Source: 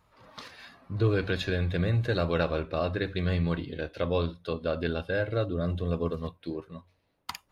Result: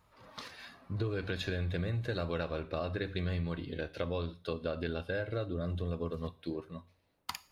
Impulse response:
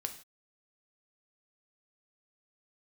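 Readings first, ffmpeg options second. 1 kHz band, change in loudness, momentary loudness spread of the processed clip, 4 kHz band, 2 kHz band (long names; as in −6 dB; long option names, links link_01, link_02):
−7.0 dB, −7.0 dB, 11 LU, −5.0 dB, −6.5 dB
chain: -filter_complex "[0:a]acompressor=threshold=-30dB:ratio=4,asplit=2[link_01][link_02];[1:a]atrim=start_sample=2205,highshelf=frequency=4900:gain=9[link_03];[link_02][link_03]afir=irnorm=-1:irlink=0,volume=-9.5dB[link_04];[link_01][link_04]amix=inputs=2:normalize=0,volume=-4dB"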